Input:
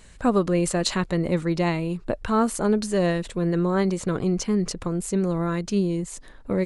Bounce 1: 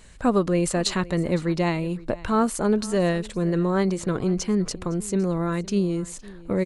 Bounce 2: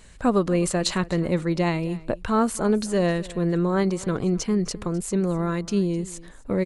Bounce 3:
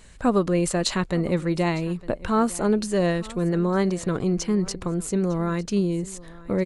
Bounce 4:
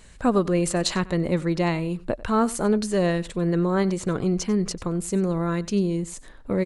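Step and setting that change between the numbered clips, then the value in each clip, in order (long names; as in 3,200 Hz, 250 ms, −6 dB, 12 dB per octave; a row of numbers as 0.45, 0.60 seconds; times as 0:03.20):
single-tap delay, delay time: 511, 257, 905, 94 milliseconds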